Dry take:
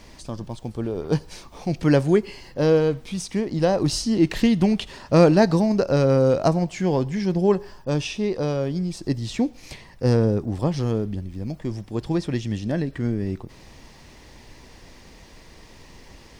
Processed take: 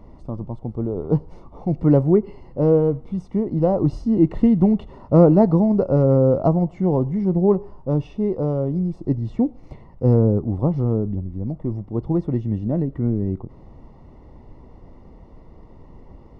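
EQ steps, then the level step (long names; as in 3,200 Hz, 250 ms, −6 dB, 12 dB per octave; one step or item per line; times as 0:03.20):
Savitzky-Golay smoothing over 65 samples
low-shelf EQ 400 Hz +5.5 dB
−1.0 dB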